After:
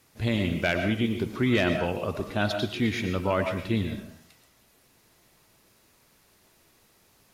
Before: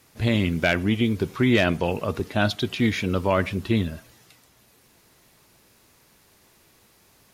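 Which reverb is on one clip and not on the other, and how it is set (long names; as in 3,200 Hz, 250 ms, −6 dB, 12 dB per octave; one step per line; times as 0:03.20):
comb and all-pass reverb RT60 0.53 s, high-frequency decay 0.7×, pre-delay 75 ms, DRR 6 dB
level −4.5 dB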